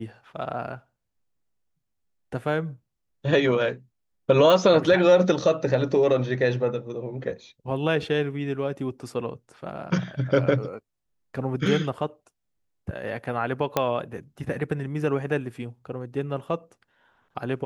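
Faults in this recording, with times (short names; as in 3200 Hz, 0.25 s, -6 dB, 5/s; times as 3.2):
4.5 pop -11 dBFS
13.77 pop -8 dBFS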